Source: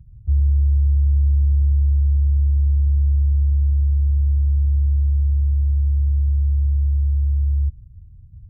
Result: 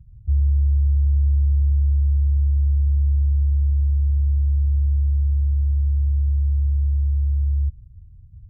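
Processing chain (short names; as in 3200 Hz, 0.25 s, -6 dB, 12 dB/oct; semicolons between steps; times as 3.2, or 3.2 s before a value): low shelf 250 Hz +6.5 dB; gain -7.5 dB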